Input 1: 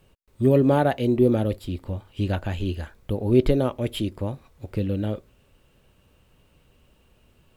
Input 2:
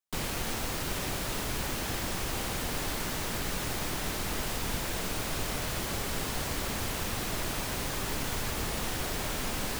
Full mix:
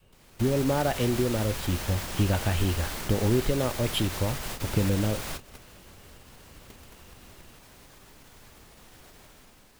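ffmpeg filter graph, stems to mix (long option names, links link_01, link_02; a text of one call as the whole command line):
ffmpeg -i stem1.wav -i stem2.wav -filter_complex "[0:a]acompressor=threshold=-24dB:ratio=6,volume=-0.5dB,asplit=2[link_01][link_02];[1:a]alimiter=level_in=1.5dB:limit=-24dB:level=0:latency=1:release=84,volume=-1.5dB,volume=-3.5dB[link_03];[link_02]apad=whole_len=432118[link_04];[link_03][link_04]sidechaingate=range=-18dB:threshold=-54dB:ratio=16:detection=peak[link_05];[link_01][link_05]amix=inputs=2:normalize=0,adynamicequalizer=threshold=0.00708:dfrequency=290:dqfactor=0.96:tfrequency=290:tqfactor=0.96:attack=5:release=100:ratio=0.375:range=3:mode=cutabove:tftype=bell,dynaudnorm=framelen=200:gausssize=5:maxgain=5dB" out.wav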